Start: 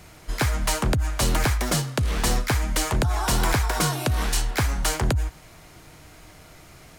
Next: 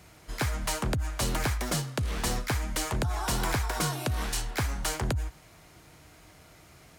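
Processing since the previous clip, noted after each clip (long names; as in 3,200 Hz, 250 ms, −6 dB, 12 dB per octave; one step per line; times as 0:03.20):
high-pass filter 41 Hz
level −6 dB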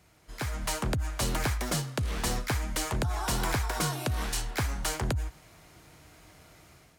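automatic gain control gain up to 8 dB
level −8.5 dB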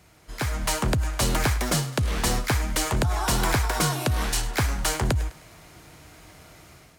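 feedback echo with a high-pass in the loop 103 ms, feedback 47%, level −17 dB
level +6 dB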